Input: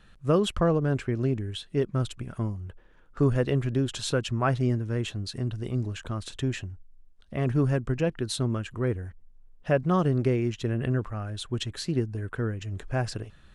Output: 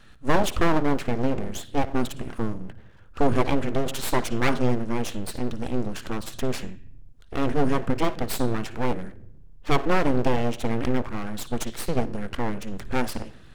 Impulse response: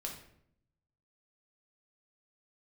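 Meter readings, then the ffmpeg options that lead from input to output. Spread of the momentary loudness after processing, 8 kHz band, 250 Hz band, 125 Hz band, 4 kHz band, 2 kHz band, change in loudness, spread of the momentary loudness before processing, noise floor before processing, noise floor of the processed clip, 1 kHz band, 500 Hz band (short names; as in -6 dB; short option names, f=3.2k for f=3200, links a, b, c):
10 LU, +4.0 dB, +2.5 dB, -4.5 dB, +1.0 dB, +5.5 dB, +1.0 dB, 10 LU, -54 dBFS, -46 dBFS, +7.5 dB, +1.5 dB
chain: -filter_complex "[0:a]bandreject=f=269.2:t=h:w=4,bandreject=f=538.4:t=h:w=4,bandreject=f=807.6:t=h:w=4,bandreject=f=1.0768k:t=h:w=4,bandreject=f=1.346k:t=h:w=4,bandreject=f=1.6152k:t=h:w=4,bandreject=f=1.8844k:t=h:w=4,bandreject=f=2.1536k:t=h:w=4,bandreject=f=2.4228k:t=h:w=4,asplit=2[a][b];[1:a]atrim=start_sample=2205,adelay=56[c];[b][c]afir=irnorm=-1:irlink=0,volume=-15.5dB[d];[a][d]amix=inputs=2:normalize=0,aeval=exprs='abs(val(0))':c=same,volume=5.5dB"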